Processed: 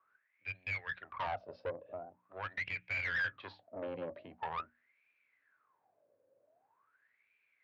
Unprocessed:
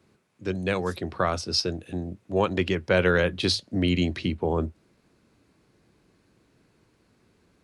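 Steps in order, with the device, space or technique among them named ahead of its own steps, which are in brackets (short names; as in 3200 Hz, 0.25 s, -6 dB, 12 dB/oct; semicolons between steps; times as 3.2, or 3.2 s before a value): wah-wah guitar rig (wah 0.44 Hz 530–2400 Hz, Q 16; tube stage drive 45 dB, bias 0.6; speaker cabinet 89–3800 Hz, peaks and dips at 100 Hz +9 dB, 200 Hz -6 dB, 350 Hz -6 dB, 600 Hz +3 dB, 1700 Hz +3 dB); notches 60/120/180/240/300 Hz; gain +11.5 dB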